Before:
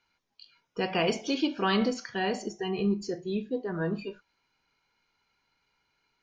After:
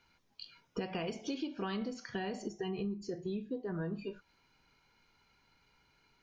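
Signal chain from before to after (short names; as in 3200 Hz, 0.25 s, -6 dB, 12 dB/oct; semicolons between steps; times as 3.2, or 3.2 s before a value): low shelf 300 Hz +7.5 dB; compressor 8:1, threshold -39 dBFS, peak gain reduction 20 dB; gain +3.5 dB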